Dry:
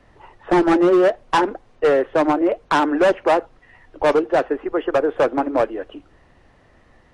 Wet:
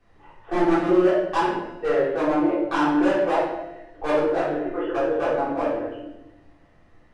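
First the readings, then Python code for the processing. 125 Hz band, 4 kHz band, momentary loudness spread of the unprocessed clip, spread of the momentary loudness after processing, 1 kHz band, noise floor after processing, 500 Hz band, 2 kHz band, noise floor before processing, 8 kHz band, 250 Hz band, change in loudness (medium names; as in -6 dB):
-1.0 dB, -6.0 dB, 8 LU, 11 LU, -4.5 dB, -55 dBFS, -4.5 dB, -4.5 dB, -54 dBFS, no reading, -2.5 dB, -4.0 dB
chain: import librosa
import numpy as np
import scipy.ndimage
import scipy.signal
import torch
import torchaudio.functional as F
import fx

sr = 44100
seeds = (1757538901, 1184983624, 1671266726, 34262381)

y = fx.comb_fb(x, sr, f0_hz=99.0, decay_s=1.3, harmonics='odd', damping=0.0, mix_pct=60)
y = fx.room_shoebox(y, sr, seeds[0], volume_m3=330.0, walls='mixed', distance_m=3.6)
y = F.gain(torch.from_numpy(y), -7.5).numpy()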